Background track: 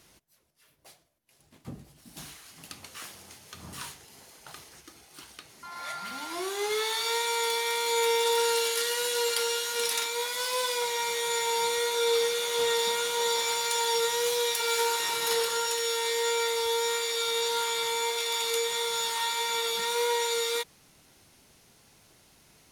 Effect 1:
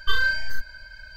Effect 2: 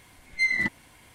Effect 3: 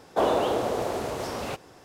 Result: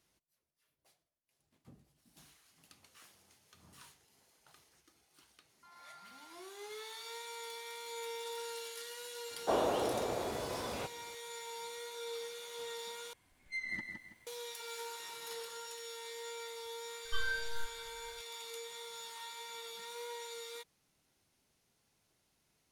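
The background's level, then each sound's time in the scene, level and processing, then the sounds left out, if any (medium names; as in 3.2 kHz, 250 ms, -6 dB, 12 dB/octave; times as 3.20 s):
background track -17.5 dB
9.31 s: add 3 -8.5 dB
13.13 s: replace with 2 -16.5 dB + bit-crushed delay 164 ms, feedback 35%, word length 9-bit, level -5 dB
17.05 s: add 1 -14.5 dB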